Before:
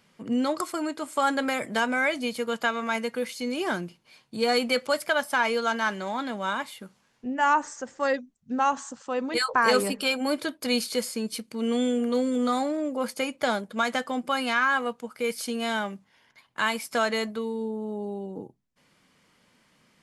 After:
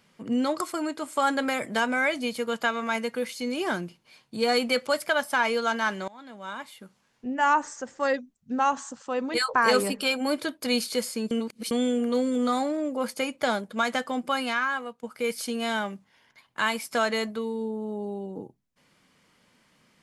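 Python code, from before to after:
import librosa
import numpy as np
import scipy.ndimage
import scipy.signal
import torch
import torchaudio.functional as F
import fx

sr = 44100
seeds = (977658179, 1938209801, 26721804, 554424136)

y = fx.edit(x, sr, fx.fade_in_from(start_s=6.08, length_s=1.24, floor_db=-22.0),
    fx.reverse_span(start_s=11.31, length_s=0.4),
    fx.fade_out_to(start_s=14.32, length_s=0.71, floor_db=-12.0), tone=tone)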